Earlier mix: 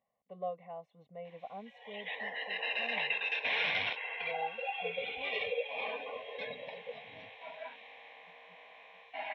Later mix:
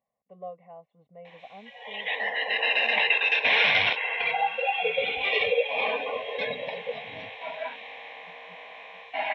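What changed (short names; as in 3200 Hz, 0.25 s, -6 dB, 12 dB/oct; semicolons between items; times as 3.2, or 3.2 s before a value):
speech: add air absorption 340 m; background +11.0 dB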